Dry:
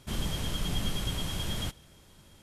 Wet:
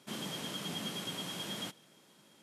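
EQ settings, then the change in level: HPF 180 Hz 24 dB/oct; high shelf 10000 Hz -3.5 dB; -3.0 dB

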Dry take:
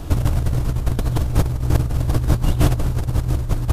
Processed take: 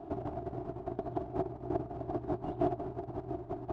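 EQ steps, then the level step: double band-pass 510 Hz, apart 0.85 oct; air absorption 63 m; 0.0 dB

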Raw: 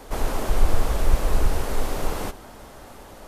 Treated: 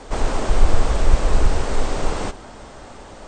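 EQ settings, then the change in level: brick-wall FIR low-pass 8900 Hz; +4.0 dB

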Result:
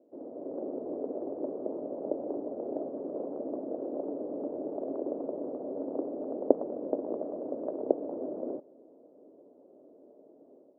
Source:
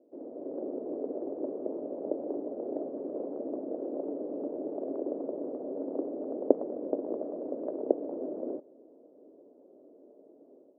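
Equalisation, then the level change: LPF 1200 Hz 12 dB/oct; bell 360 Hz -9 dB 2.4 oct; +8.0 dB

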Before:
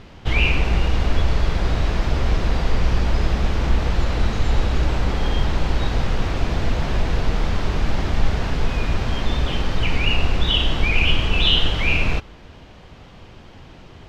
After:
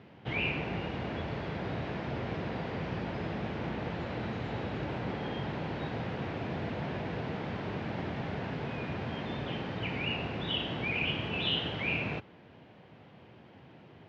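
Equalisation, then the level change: HPF 110 Hz 24 dB/oct; LPF 2500 Hz 12 dB/oct; bell 1200 Hz -5 dB 0.53 oct; -8.0 dB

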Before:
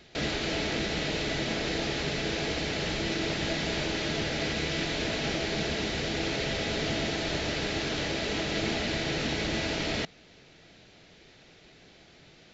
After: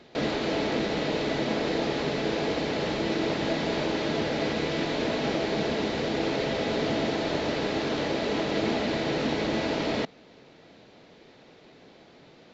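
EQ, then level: ten-band EQ 125 Hz +5 dB, 250 Hz +11 dB, 500 Hz +10 dB, 1000 Hz +12 dB, 2000 Hz +3 dB, 4000 Hz +5 dB; -8.0 dB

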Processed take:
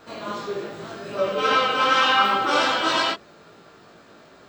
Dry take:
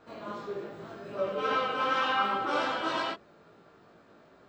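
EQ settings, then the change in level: high shelf 2700 Hz +11 dB; +7.0 dB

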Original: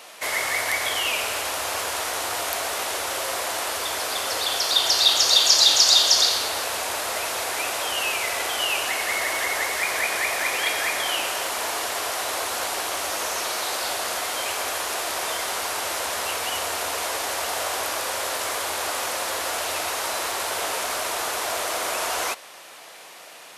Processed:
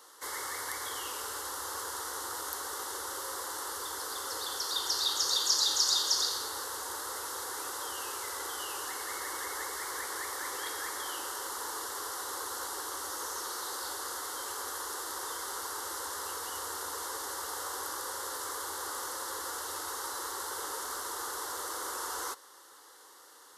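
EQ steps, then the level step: fixed phaser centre 660 Hz, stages 6; -8.0 dB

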